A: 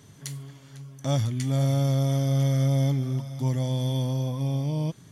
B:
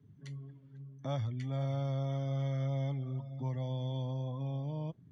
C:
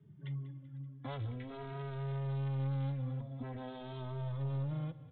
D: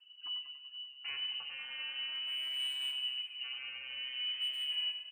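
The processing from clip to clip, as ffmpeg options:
-filter_complex "[0:a]acrossover=split=120|480|1800[a][b][c][d];[b]acompressor=threshold=-35dB:ratio=6[e];[a][e][c][d]amix=inputs=4:normalize=0,afftdn=nr=17:nf=-47,lowpass=2.6k,volume=-6.5dB"
-filter_complex "[0:a]aresample=8000,asoftclip=type=hard:threshold=-38.5dB,aresample=44100,aecho=1:1:192|384|576|768:0.141|0.072|0.0367|0.0187,asplit=2[a][b];[b]adelay=2.8,afreqshift=-0.47[c];[a][c]amix=inputs=2:normalize=1,volume=4.5dB"
-af "lowpass=f=2.6k:t=q:w=0.5098,lowpass=f=2.6k:t=q:w=0.6013,lowpass=f=2.6k:t=q:w=0.9,lowpass=f=2.6k:t=q:w=2.563,afreqshift=-3100,volume=31.5dB,asoftclip=hard,volume=-31.5dB,aecho=1:1:95|190|285|380|475|570:0.398|0.203|0.104|0.0528|0.0269|0.0137"

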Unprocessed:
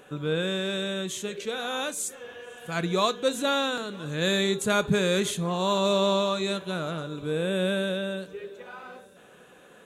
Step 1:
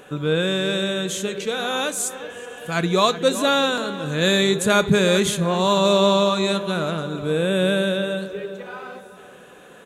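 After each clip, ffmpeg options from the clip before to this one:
-filter_complex "[0:a]asplit=2[a][b];[b]adelay=375,lowpass=f=1.9k:p=1,volume=-12dB,asplit=2[c][d];[d]adelay=375,lowpass=f=1.9k:p=1,volume=0.41,asplit=2[e][f];[f]adelay=375,lowpass=f=1.9k:p=1,volume=0.41,asplit=2[g][h];[h]adelay=375,lowpass=f=1.9k:p=1,volume=0.41[i];[a][c][e][g][i]amix=inputs=5:normalize=0,volume=6.5dB"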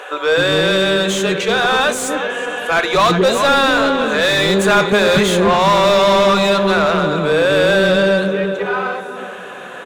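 -filter_complex "[0:a]acrossover=split=430[a][b];[a]adelay=260[c];[c][b]amix=inputs=2:normalize=0,asplit=2[d][e];[e]highpass=f=720:p=1,volume=26dB,asoftclip=type=tanh:threshold=-3dB[f];[d][f]amix=inputs=2:normalize=0,lowpass=f=1.7k:p=1,volume=-6dB"

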